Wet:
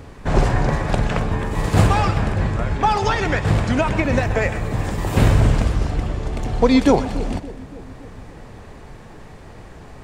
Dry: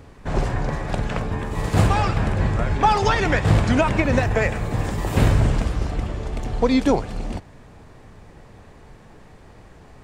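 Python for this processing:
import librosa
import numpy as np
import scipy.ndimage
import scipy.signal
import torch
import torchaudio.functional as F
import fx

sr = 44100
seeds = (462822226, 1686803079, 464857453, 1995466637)

p1 = x + fx.echo_split(x, sr, split_hz=520.0, low_ms=284, high_ms=124, feedback_pct=52, wet_db=-14.5, dry=0)
p2 = fx.rider(p1, sr, range_db=5, speed_s=2.0)
y = p2 * librosa.db_to_amplitude(1.0)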